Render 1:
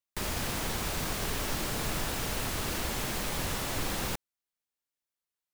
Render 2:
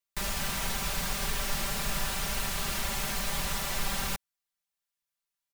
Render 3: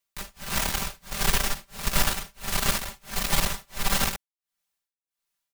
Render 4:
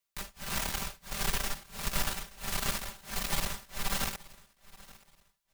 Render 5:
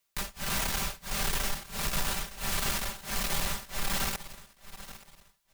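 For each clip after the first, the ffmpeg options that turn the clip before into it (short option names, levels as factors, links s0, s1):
-af "equalizer=f=330:w=1:g=-10,aecho=1:1:5.1:0.8"
-af "tremolo=f=1.5:d=0.99,aeval=exprs='0.126*(cos(1*acos(clip(val(0)/0.126,-1,1)))-cos(1*PI/2))+0.0224*(cos(6*acos(clip(val(0)/0.126,-1,1)))-cos(6*PI/2))':c=same,volume=2.24"
-af "acompressor=threshold=0.0224:ratio=1.5,aecho=1:1:876|1752:0.0891|0.025,volume=0.75"
-af "asoftclip=type=tanh:threshold=0.0282,volume=2.37"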